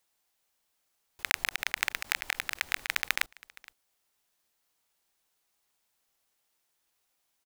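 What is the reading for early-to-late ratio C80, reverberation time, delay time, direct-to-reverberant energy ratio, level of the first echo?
no reverb, no reverb, 467 ms, no reverb, -23.0 dB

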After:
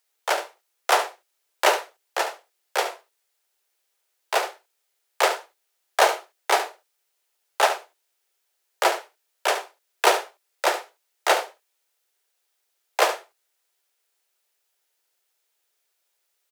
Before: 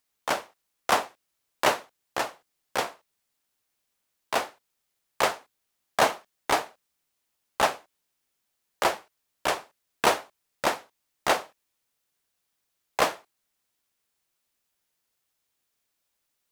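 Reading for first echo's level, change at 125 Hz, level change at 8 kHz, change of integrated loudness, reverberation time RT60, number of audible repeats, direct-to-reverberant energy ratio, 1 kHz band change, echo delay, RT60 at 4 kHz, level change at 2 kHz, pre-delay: -11.0 dB, under -40 dB, +4.5 dB, +3.5 dB, no reverb, 1, no reverb, +3.5 dB, 72 ms, no reverb, +4.5 dB, no reverb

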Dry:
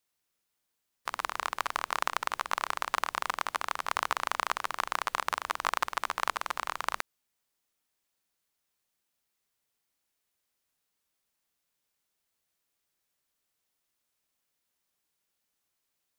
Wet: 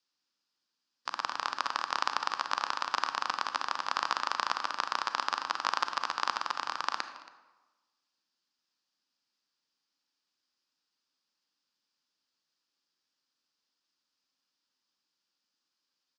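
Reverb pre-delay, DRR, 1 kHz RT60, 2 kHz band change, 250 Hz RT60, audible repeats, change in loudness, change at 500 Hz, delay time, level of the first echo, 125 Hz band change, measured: 31 ms, 9.0 dB, 1.1 s, -1.5 dB, 1.1 s, 1, 0.0 dB, -4.0 dB, 276 ms, -20.0 dB, no reading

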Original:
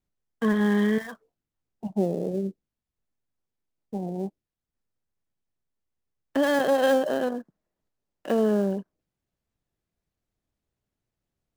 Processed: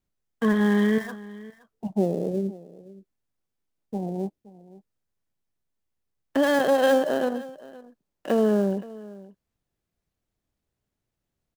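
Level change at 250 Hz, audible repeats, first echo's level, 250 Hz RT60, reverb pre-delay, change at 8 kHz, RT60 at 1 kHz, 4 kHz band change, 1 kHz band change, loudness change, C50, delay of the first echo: +1.5 dB, 1, -19.5 dB, no reverb, no reverb, +1.5 dB, no reverb, +1.5 dB, +1.5 dB, +1.5 dB, no reverb, 520 ms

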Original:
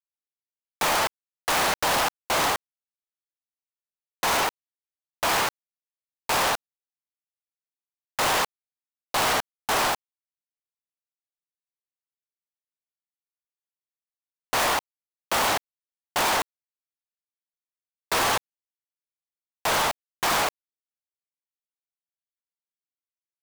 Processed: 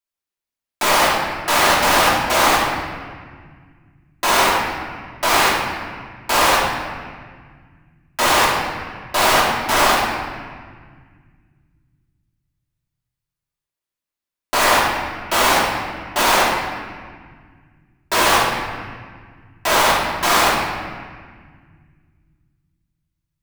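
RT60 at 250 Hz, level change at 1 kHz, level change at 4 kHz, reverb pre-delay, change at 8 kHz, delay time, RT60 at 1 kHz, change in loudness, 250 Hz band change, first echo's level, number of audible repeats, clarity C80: 2.7 s, +9.5 dB, +8.0 dB, 3 ms, +7.0 dB, no echo, 1.7 s, +7.5 dB, +11.0 dB, no echo, no echo, 2.0 dB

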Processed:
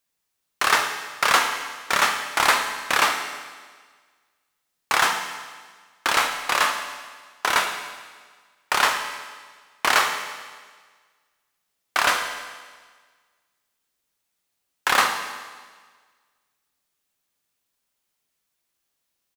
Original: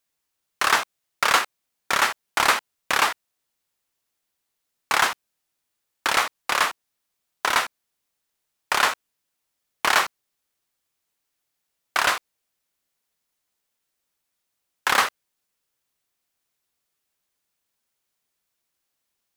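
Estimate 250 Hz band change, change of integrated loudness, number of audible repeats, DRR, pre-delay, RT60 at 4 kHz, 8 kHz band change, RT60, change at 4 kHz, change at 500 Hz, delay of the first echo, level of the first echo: +1.5 dB, +0.5 dB, 1, 4.5 dB, 12 ms, 1.5 s, +1.5 dB, 1.5 s, +1.5 dB, +1.5 dB, 109 ms, -15.5 dB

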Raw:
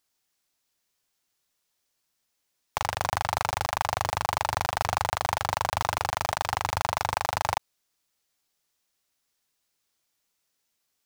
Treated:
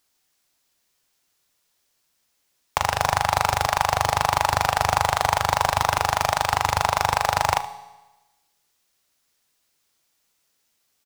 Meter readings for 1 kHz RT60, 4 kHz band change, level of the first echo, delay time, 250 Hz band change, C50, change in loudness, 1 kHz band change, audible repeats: 1.1 s, +6.5 dB, -16.5 dB, 75 ms, +7.0 dB, 12.5 dB, +6.5 dB, +7.0 dB, 1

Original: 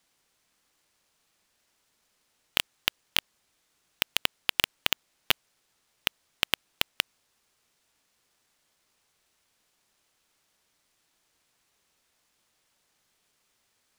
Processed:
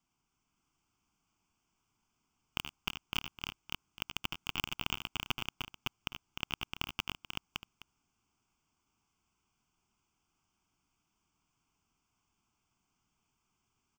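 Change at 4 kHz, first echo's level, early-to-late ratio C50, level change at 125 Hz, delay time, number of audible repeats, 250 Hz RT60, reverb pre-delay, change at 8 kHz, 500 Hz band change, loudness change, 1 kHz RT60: -9.5 dB, -9.5 dB, no reverb, +2.5 dB, 77 ms, 5, no reverb, no reverb, -10.5 dB, -10.0 dB, -10.0 dB, no reverb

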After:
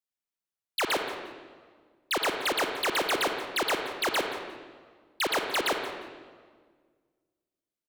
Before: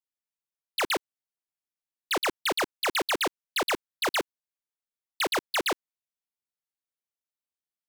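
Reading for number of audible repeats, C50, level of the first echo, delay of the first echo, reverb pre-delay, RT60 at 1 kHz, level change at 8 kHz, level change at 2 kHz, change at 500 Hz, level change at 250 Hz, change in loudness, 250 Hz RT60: 1, 4.5 dB, -14.5 dB, 176 ms, 39 ms, 1.5 s, -1.0 dB, +0.5 dB, +1.0 dB, 0.0 dB, -0.5 dB, 2.0 s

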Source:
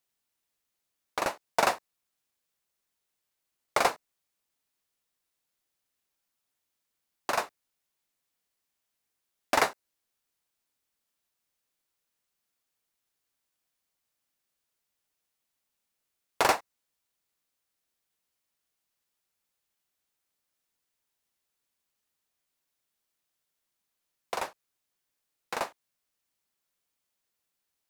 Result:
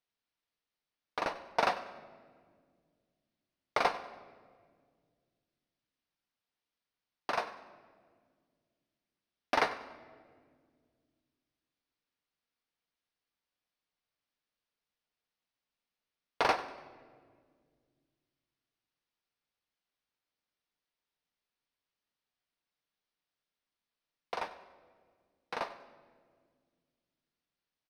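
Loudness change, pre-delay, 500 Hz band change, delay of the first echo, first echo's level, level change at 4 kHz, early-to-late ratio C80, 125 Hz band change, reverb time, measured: -4.5 dB, 4 ms, -4.0 dB, 96 ms, -17.5 dB, -5.0 dB, 13.0 dB, -4.0 dB, 1.8 s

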